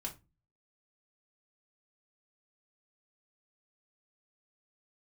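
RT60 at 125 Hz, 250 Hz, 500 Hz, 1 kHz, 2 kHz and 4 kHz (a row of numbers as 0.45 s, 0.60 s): 0.60 s, 0.45 s, 0.25 s, 0.25 s, 0.20 s, 0.20 s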